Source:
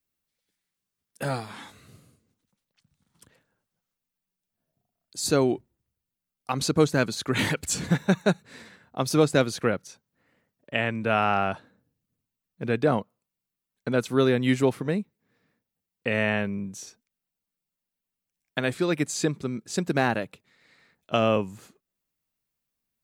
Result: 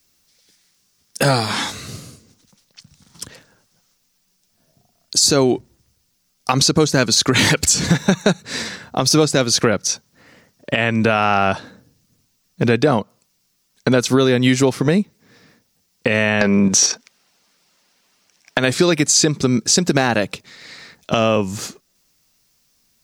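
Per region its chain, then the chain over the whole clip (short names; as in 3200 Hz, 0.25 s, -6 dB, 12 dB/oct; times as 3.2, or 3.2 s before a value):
16.41–18.58 level quantiser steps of 9 dB + overdrive pedal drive 25 dB, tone 1600 Hz, clips at -10.5 dBFS
whole clip: bell 5500 Hz +11 dB 0.95 oct; compressor 6:1, threshold -29 dBFS; maximiser +21 dB; gain -2.5 dB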